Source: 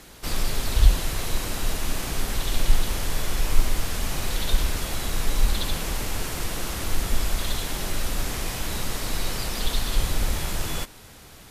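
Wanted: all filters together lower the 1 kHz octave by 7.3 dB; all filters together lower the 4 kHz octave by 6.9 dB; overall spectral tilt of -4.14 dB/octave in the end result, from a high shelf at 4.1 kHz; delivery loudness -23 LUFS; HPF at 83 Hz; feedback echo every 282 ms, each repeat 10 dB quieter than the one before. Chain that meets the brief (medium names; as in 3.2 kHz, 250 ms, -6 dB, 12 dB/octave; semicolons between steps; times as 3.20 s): high-pass 83 Hz; peaking EQ 1 kHz -9 dB; peaking EQ 4 kHz -3.5 dB; treble shelf 4.1 kHz -8 dB; feedback delay 282 ms, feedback 32%, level -10 dB; trim +11 dB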